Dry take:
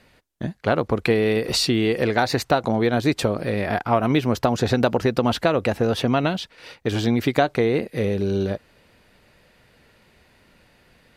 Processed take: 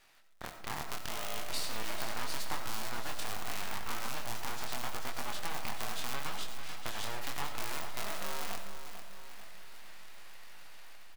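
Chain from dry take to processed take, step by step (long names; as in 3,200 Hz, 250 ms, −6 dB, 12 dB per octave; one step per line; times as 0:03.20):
sub-harmonics by changed cycles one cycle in 2, inverted
high-pass filter 750 Hz 24 dB per octave
high-shelf EQ 11,000 Hz +7.5 dB
automatic gain control gain up to 8 dB
brickwall limiter −8 dBFS, peak gain reduction 7.5 dB
downward compressor 4 to 1, threshold −30 dBFS, peak gain reduction 9 dB
chorus effect 0.78 Hz, delay 20 ms, depth 7.9 ms
surface crackle 540 per second −61 dBFS
half-wave rectification
repeating echo 443 ms, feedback 51%, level −10 dB
on a send at −8 dB: convolution reverb RT60 0.55 s, pre-delay 50 ms
on the sum: level +1 dB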